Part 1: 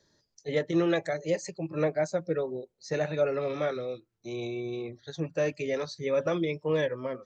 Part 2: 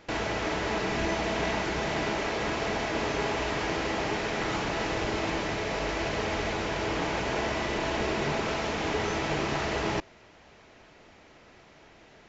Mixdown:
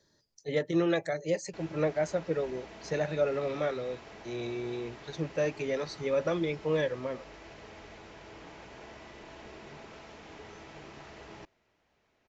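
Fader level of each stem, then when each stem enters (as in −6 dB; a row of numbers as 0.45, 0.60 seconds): −1.5, −19.0 decibels; 0.00, 1.45 seconds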